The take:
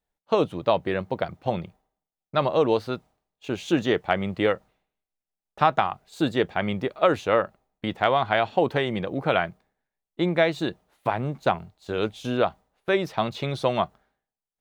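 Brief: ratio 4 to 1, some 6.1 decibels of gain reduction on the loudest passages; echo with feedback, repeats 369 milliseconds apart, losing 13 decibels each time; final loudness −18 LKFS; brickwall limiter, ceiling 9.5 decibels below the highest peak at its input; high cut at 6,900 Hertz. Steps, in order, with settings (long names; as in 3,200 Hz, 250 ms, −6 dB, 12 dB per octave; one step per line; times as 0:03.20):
low-pass filter 6,900 Hz
downward compressor 4 to 1, threshold −23 dBFS
brickwall limiter −18 dBFS
repeating echo 369 ms, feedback 22%, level −13 dB
level +14 dB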